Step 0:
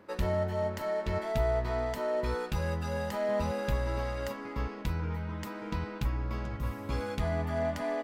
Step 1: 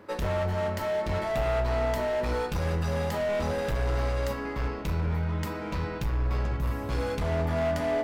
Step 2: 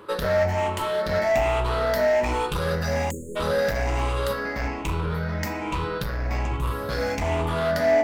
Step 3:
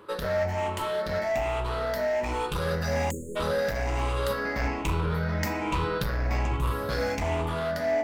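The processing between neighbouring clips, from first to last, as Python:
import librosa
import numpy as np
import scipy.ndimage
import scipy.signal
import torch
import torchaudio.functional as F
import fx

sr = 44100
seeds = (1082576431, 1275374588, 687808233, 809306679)

y1 = np.clip(x, -10.0 ** (-32.0 / 20.0), 10.0 ** (-32.0 / 20.0))
y1 = fx.room_shoebox(y1, sr, seeds[0], volume_m3=67.0, walls='mixed', distance_m=0.32)
y1 = y1 * 10.0 ** (5.0 / 20.0)
y2 = fx.spec_ripple(y1, sr, per_octave=0.65, drift_hz=1.2, depth_db=10)
y2 = fx.low_shelf(y2, sr, hz=340.0, db=-6.5)
y2 = fx.spec_erase(y2, sr, start_s=3.11, length_s=0.25, low_hz=590.0, high_hz=6400.0)
y2 = y2 * 10.0 ** (6.0 / 20.0)
y3 = fx.rider(y2, sr, range_db=10, speed_s=0.5)
y3 = y3 * 10.0 ** (-3.5 / 20.0)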